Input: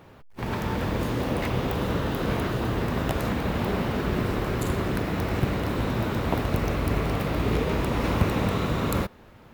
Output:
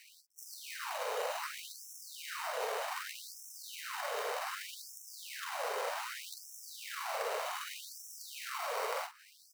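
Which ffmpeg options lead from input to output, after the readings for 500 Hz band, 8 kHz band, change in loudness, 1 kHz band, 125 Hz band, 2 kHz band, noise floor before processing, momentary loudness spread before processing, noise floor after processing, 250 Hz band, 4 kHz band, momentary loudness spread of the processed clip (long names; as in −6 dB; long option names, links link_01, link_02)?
−12.5 dB, 0.0 dB, −13.0 dB, −8.0 dB, below −40 dB, −8.0 dB, −50 dBFS, 2 LU, −61 dBFS, below −40 dB, −6.0 dB, 10 LU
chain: -filter_complex "[0:a]acrusher=samples=13:mix=1:aa=0.000001,acrossover=split=500|1500[link_01][link_02][link_03];[link_01]acompressor=threshold=-33dB:ratio=4[link_04];[link_02]acompressor=threshold=-40dB:ratio=4[link_05];[link_03]acompressor=threshold=-46dB:ratio=4[link_06];[link_04][link_05][link_06]amix=inputs=3:normalize=0,asplit=2[link_07][link_08];[link_08]adelay=45,volume=-8dB[link_09];[link_07][link_09]amix=inputs=2:normalize=0,afftfilt=real='re*gte(b*sr/1024,400*pow(5400/400,0.5+0.5*sin(2*PI*0.65*pts/sr)))':imag='im*gte(b*sr/1024,400*pow(5400/400,0.5+0.5*sin(2*PI*0.65*pts/sr)))':win_size=1024:overlap=0.75,volume=2.5dB"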